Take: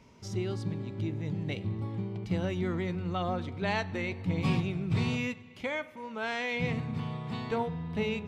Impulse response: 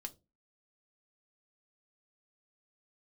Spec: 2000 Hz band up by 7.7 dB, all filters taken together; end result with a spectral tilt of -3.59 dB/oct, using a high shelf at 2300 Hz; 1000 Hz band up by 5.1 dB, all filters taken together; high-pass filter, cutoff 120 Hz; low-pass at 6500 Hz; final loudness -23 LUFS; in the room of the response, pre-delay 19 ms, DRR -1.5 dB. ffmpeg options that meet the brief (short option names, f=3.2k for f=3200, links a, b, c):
-filter_complex "[0:a]highpass=120,lowpass=6.5k,equalizer=f=1k:t=o:g=4.5,equalizer=f=2k:t=o:g=5.5,highshelf=f=2.3k:g=5,asplit=2[a][b];[1:a]atrim=start_sample=2205,adelay=19[c];[b][c]afir=irnorm=-1:irlink=0,volume=5dB[d];[a][d]amix=inputs=2:normalize=0,volume=4dB"